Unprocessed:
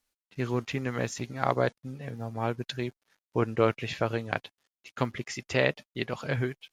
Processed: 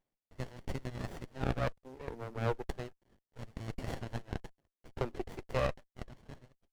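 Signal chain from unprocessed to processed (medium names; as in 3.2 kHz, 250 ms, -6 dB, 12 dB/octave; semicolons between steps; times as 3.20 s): fade out at the end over 1.79 s; peak limiter -16 dBFS, peak gain reduction 8.5 dB; LFO high-pass sine 0.34 Hz 370–2300 Hz; sliding maximum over 33 samples; trim -3 dB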